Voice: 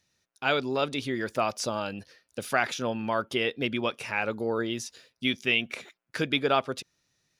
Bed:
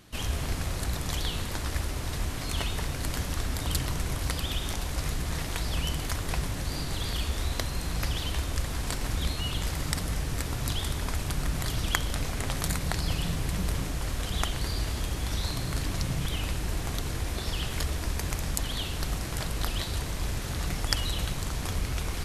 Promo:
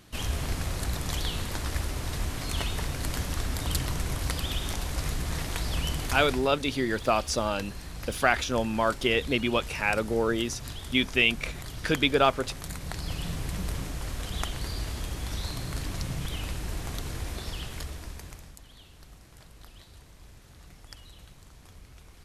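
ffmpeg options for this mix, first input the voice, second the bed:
-filter_complex "[0:a]adelay=5700,volume=1.33[s0];[1:a]volume=2,afade=t=out:st=6.15:d=0.33:silence=0.354813,afade=t=in:st=12.64:d=0.71:silence=0.501187,afade=t=out:st=17.27:d=1.3:silence=0.141254[s1];[s0][s1]amix=inputs=2:normalize=0"

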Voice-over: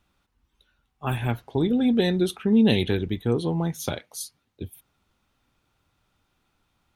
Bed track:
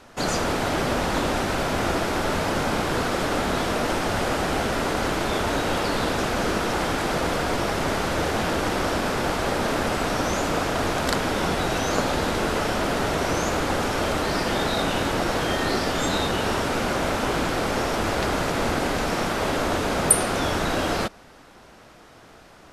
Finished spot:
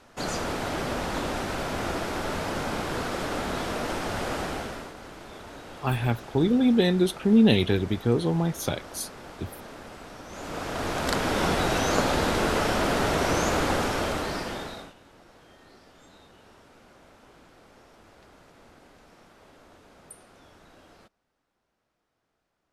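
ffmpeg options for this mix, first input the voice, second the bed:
-filter_complex "[0:a]adelay=4800,volume=1.06[s0];[1:a]volume=4.22,afade=t=out:st=4.4:d=0.53:silence=0.223872,afade=t=in:st=10.28:d=1.16:silence=0.11885,afade=t=out:st=13.65:d=1.29:silence=0.0334965[s1];[s0][s1]amix=inputs=2:normalize=0"

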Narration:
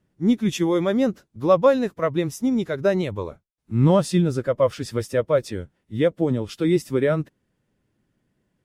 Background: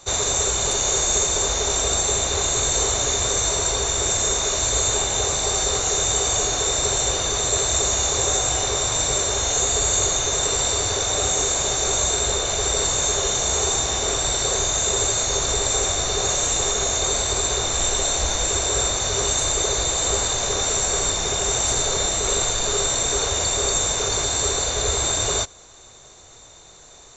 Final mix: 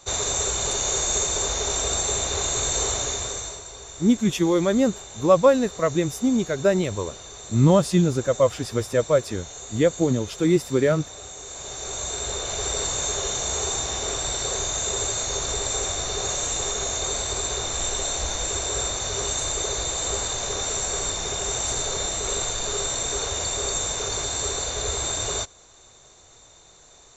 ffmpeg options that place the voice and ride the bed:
-filter_complex "[0:a]adelay=3800,volume=1.06[s0];[1:a]volume=2.99,afade=t=out:st=2.91:d=0.72:silence=0.188365,afade=t=in:st=11.42:d=1.23:silence=0.223872[s1];[s0][s1]amix=inputs=2:normalize=0"

